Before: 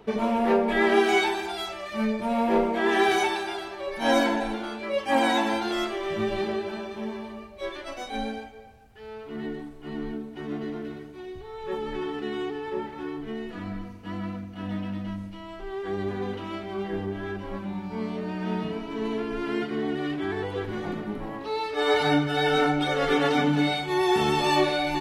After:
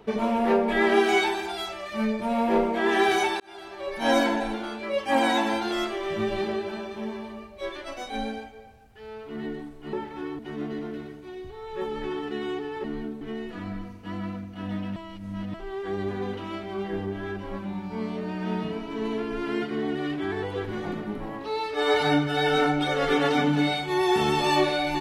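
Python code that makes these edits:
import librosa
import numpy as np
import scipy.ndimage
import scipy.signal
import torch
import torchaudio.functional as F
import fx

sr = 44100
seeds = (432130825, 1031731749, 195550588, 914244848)

y = fx.edit(x, sr, fx.fade_in_span(start_s=3.4, length_s=0.47),
    fx.swap(start_s=9.93, length_s=0.37, other_s=12.75, other_length_s=0.46),
    fx.reverse_span(start_s=14.96, length_s=0.58), tone=tone)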